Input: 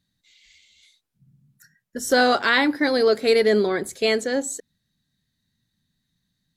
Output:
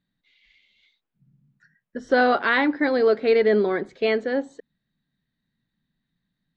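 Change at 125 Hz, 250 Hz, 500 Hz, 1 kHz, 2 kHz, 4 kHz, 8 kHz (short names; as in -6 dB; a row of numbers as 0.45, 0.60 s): n/a, -0.5 dB, -0.5 dB, -0.5 dB, -1.5 dB, -8.5 dB, under -25 dB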